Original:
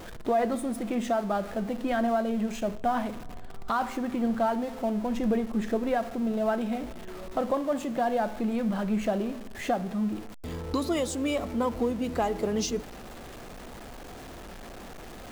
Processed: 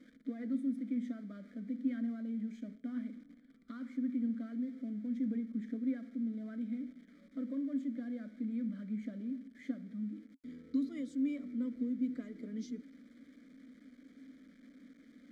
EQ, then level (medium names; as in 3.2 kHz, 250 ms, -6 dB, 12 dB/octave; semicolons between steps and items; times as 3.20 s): vowel filter i; static phaser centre 550 Hz, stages 8; +1.0 dB